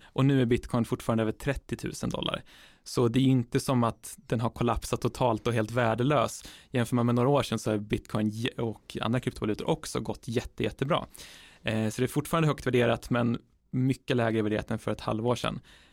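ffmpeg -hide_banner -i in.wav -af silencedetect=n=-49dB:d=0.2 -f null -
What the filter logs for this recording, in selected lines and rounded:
silence_start: 13.40
silence_end: 13.73 | silence_duration: 0.33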